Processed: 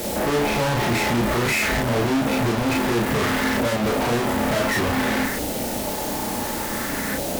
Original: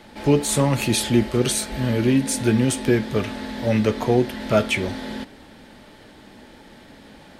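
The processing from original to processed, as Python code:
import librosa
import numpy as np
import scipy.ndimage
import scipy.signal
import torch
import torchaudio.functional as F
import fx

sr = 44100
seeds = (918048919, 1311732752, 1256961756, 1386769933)

y = fx.freq_compress(x, sr, knee_hz=1700.0, ratio=4.0)
y = fx.filter_lfo_lowpass(y, sr, shape='saw_up', hz=0.56, low_hz=580.0, high_hz=1600.0, q=2.2)
y = fx.quant_dither(y, sr, seeds[0], bits=8, dither='triangular')
y = fx.fuzz(y, sr, gain_db=41.0, gate_db=-50.0)
y = fx.doubler(y, sr, ms=34.0, db=-2.0)
y = y * 10.0 ** (-9.0 / 20.0)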